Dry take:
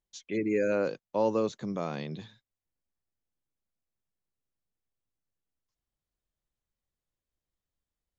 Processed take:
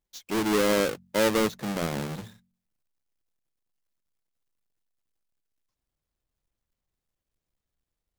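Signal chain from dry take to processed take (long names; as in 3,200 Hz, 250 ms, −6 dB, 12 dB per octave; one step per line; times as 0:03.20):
each half-wave held at its own peak
hum removal 45.5 Hz, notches 5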